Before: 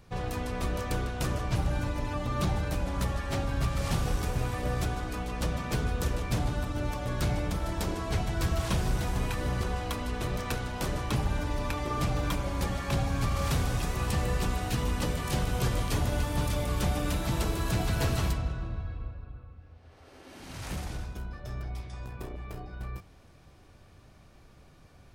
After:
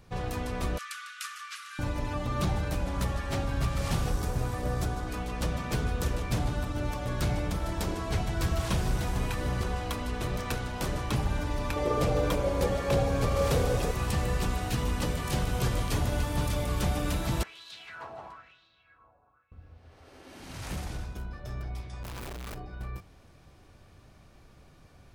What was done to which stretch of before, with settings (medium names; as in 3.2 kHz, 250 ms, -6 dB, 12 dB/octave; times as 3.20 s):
0.78–1.79 s: brick-wall FIR band-pass 1.1–13 kHz
4.10–5.07 s: peaking EQ 2.6 kHz -5.5 dB 1.1 oct
11.76–13.91 s: peaking EQ 490 Hz +14.5 dB 0.65 oct
17.43–19.52 s: wah-wah 1 Hz 760–3900 Hz, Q 3.7
22.03–22.55 s: one-bit comparator